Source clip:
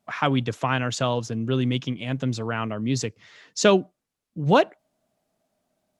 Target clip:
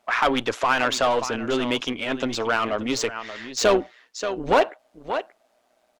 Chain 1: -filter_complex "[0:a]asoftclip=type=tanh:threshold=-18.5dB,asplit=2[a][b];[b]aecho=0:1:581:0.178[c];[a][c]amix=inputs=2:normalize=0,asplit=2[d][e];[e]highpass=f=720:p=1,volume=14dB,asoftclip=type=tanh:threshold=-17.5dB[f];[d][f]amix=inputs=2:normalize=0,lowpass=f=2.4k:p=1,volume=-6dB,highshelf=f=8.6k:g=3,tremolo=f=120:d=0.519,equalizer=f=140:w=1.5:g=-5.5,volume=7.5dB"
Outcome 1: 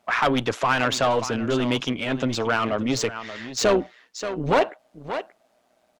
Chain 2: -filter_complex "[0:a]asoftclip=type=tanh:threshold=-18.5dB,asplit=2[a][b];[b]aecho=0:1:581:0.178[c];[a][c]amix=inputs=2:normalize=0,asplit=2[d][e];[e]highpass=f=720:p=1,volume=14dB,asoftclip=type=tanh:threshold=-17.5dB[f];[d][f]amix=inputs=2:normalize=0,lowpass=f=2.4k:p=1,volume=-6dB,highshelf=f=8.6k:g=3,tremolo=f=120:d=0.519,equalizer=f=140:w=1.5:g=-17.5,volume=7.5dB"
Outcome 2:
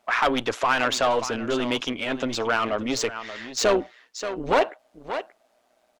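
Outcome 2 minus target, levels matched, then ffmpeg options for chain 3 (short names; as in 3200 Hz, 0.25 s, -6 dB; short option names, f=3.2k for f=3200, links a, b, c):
soft clip: distortion +7 dB
-filter_complex "[0:a]asoftclip=type=tanh:threshold=-11.5dB,asplit=2[a][b];[b]aecho=0:1:581:0.178[c];[a][c]amix=inputs=2:normalize=0,asplit=2[d][e];[e]highpass=f=720:p=1,volume=14dB,asoftclip=type=tanh:threshold=-17.5dB[f];[d][f]amix=inputs=2:normalize=0,lowpass=f=2.4k:p=1,volume=-6dB,highshelf=f=8.6k:g=3,tremolo=f=120:d=0.519,equalizer=f=140:w=1.5:g=-17.5,volume=7.5dB"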